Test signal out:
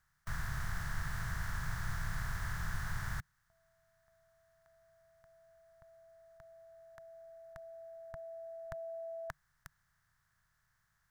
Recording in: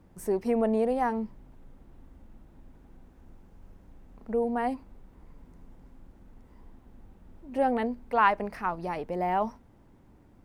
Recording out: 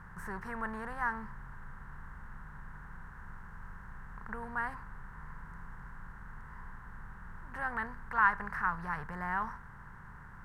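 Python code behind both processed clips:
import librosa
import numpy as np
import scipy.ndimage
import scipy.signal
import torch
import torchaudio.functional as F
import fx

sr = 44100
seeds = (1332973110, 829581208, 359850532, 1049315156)

y = fx.bin_compress(x, sr, power=0.6)
y = fx.curve_eq(y, sr, hz=(150.0, 260.0, 420.0, 630.0, 950.0, 1700.0, 2500.0, 5900.0, 9000.0), db=(0, -25, -23, -27, -9, 1, -19, -13, -16))
y = F.gain(torch.from_numpy(y), 1.0).numpy()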